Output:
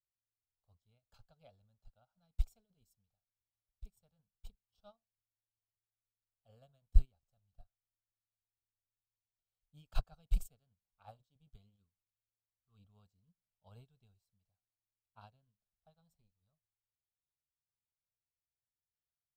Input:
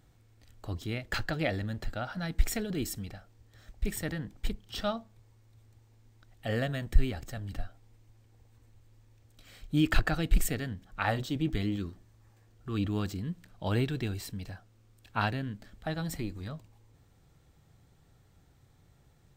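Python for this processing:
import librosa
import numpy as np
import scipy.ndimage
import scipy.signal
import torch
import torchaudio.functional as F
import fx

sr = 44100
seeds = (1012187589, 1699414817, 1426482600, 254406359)

y = fx.fixed_phaser(x, sr, hz=780.0, stages=4)
y = fx.upward_expand(y, sr, threshold_db=-42.0, expansion=2.5)
y = y * librosa.db_to_amplitude(-1.0)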